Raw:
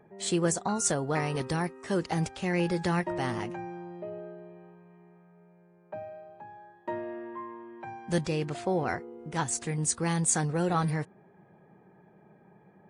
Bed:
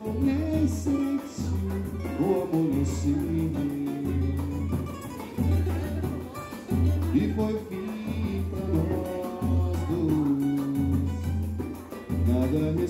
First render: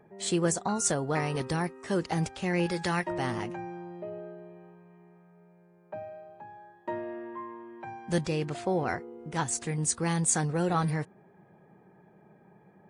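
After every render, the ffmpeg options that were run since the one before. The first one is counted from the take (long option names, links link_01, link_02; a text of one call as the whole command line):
ffmpeg -i in.wav -filter_complex "[0:a]asettb=1/sr,asplit=3[link_01][link_02][link_03];[link_01]atrim=end=2.664[link_04];[link_02]atrim=start=2.66:end=3.09,asetpts=PTS-STARTPTS,afade=type=in:duration=0.004:curve=qsin,afade=type=out:start_time=0.426:duration=0.004:curve=qsin,tiltshelf=frequency=810:gain=-4[link_05];[link_03]atrim=start=3.086[link_06];[link_04][link_05]acrossfade=duration=0.004:curve1=hsin:curve2=qsin[link_07];[link_07][link_06]acrossfade=duration=0.004:curve1=qsin:curve2=hsin" out.wav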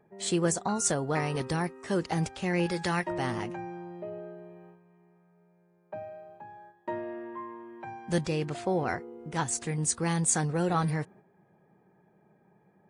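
ffmpeg -i in.wav -af "agate=range=-6dB:threshold=-52dB:ratio=16:detection=peak" out.wav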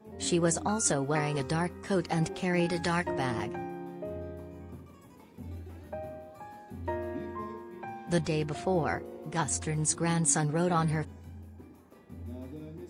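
ffmpeg -i in.wav -i bed.wav -filter_complex "[1:a]volume=-18dB[link_01];[0:a][link_01]amix=inputs=2:normalize=0" out.wav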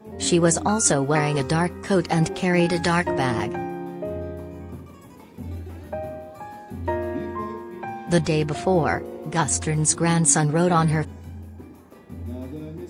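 ffmpeg -i in.wav -af "volume=8.5dB" out.wav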